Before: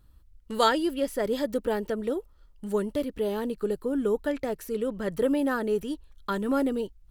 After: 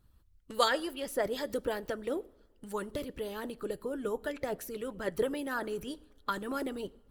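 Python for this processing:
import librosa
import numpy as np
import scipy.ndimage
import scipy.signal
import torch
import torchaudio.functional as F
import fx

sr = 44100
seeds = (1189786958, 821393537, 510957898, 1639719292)

y = fx.rev_double_slope(x, sr, seeds[0], early_s=0.59, late_s=3.4, knee_db=-26, drr_db=14.0)
y = fx.hpss(y, sr, part='harmonic', gain_db=-12)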